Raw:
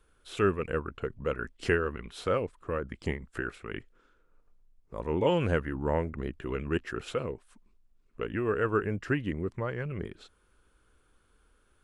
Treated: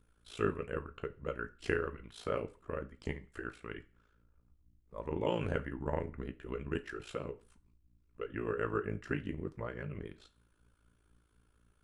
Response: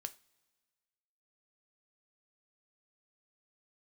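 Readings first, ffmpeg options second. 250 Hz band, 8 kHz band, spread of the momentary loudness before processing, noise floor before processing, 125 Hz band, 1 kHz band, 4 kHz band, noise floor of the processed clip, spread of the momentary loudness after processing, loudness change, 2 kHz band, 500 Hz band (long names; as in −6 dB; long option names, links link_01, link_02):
−7.0 dB, can't be measured, 12 LU, −67 dBFS, −7.5 dB, −7.0 dB, −7.5 dB, −72 dBFS, 11 LU, −7.0 dB, −7.0 dB, −7.0 dB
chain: -filter_complex "[0:a]aeval=exprs='val(0)+0.000708*(sin(2*PI*60*n/s)+sin(2*PI*2*60*n/s)/2+sin(2*PI*3*60*n/s)/3+sin(2*PI*4*60*n/s)/4+sin(2*PI*5*60*n/s)/5)':channel_layout=same,tremolo=f=56:d=0.919[link_01];[1:a]atrim=start_sample=2205,afade=type=out:start_time=0.25:duration=0.01,atrim=end_sample=11466,asetrate=43659,aresample=44100[link_02];[link_01][link_02]afir=irnorm=-1:irlink=0"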